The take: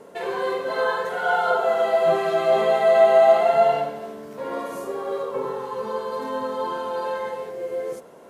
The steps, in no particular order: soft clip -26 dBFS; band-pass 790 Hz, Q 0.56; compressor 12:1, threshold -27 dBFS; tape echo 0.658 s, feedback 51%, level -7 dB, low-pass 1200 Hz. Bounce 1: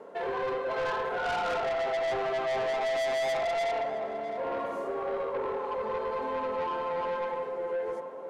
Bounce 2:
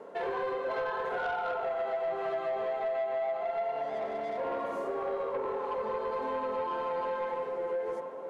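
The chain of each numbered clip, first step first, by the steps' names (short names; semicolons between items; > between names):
band-pass > tape echo > soft clip > compressor; band-pass > tape echo > compressor > soft clip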